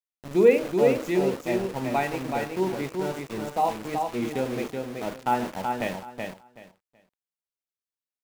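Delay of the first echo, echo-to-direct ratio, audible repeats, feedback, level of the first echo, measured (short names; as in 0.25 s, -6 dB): 0.377 s, -4.5 dB, 3, 20%, -4.5 dB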